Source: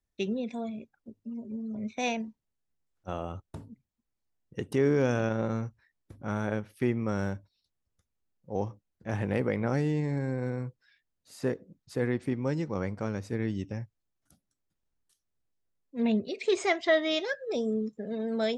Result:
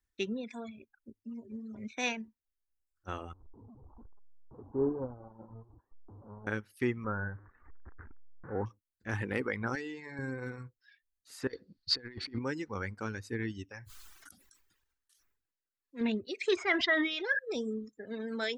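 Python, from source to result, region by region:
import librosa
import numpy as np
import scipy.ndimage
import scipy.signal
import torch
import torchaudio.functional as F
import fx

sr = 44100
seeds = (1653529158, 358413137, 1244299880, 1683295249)

y = fx.chain(x, sr, fx.delta_mod(bps=16000, step_db=-26.0),
    fx.steep_lowpass(hz=1000.0, slope=48),
    fx.upward_expand(threshold_db=-38.0, expansion=2.5), at=(3.33, 6.47))
y = fx.chain(y, sr, fx.zero_step(step_db=-37.0),
    fx.steep_lowpass(hz=1700.0, slope=48), at=(7.04, 8.66))
y = fx.chain(y, sr, fx.lowpass(hz=5800.0, slope=12),
    fx.low_shelf(hz=260.0, db=-11.5), at=(9.75, 10.19))
y = fx.chain(y, sr, fx.over_compress(threshold_db=-36.0, ratio=-0.5),
    fx.lowpass_res(hz=4500.0, q=12.0), at=(11.47, 12.39))
y = fx.chain(y, sr, fx.low_shelf(hz=310.0, db=-8.0),
    fx.sustainer(db_per_s=29.0), at=(13.69, 16.01))
y = fx.chain(y, sr, fx.air_absorb(metres=180.0),
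    fx.sustainer(db_per_s=43.0), at=(16.56, 17.39))
y = fx.graphic_eq_15(y, sr, hz=(160, 630, 1600), db=(-11, -10, 6))
y = fx.dereverb_blind(y, sr, rt60_s=1.1)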